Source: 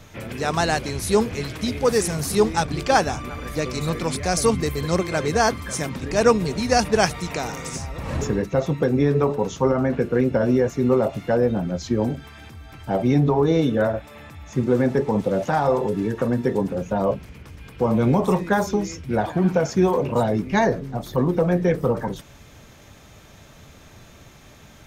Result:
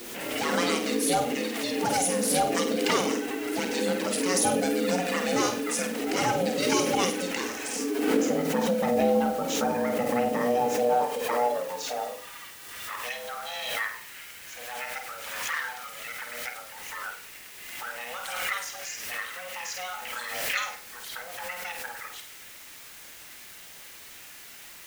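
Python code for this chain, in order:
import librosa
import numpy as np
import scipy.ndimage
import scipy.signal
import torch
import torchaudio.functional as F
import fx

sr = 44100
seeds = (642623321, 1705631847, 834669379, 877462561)

p1 = fx.graphic_eq_15(x, sr, hz=(250, 630, 2500, 10000), db=(-7, -11, 4, 5))
p2 = fx.env_flanger(p1, sr, rest_ms=8.0, full_db=-18.5)
p3 = 10.0 ** (-21.5 / 20.0) * (np.abs((p2 / 10.0 ** (-21.5 / 20.0) + 3.0) % 4.0 - 2.0) - 1.0)
p4 = p2 + (p3 * 10.0 ** (-11.0 / 20.0))
p5 = p4 * np.sin(2.0 * np.pi * 360.0 * np.arange(len(p4)) / sr)
p6 = fx.filter_sweep_highpass(p5, sr, from_hz=270.0, to_hz=1700.0, start_s=10.3, end_s=13.14, q=1.6)
p7 = fx.quant_dither(p6, sr, seeds[0], bits=8, dither='triangular')
p8 = p7 + fx.room_flutter(p7, sr, wall_m=8.5, rt60_s=0.39, dry=0)
y = fx.pre_swell(p8, sr, db_per_s=33.0)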